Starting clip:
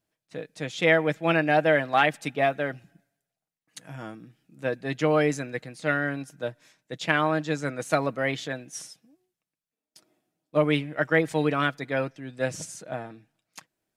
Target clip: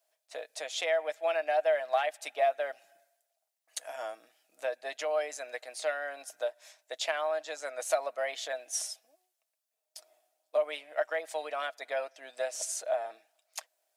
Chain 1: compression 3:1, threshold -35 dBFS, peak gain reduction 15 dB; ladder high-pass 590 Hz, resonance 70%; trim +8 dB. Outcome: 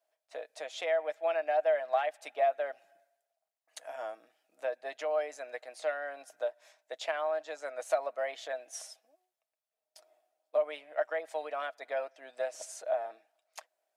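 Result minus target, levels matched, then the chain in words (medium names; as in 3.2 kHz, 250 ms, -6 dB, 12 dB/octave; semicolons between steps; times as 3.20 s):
4 kHz band -6.0 dB
compression 3:1, threshold -35 dBFS, peak gain reduction 15 dB; ladder high-pass 590 Hz, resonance 70%; treble shelf 2.8 kHz +11.5 dB; trim +8 dB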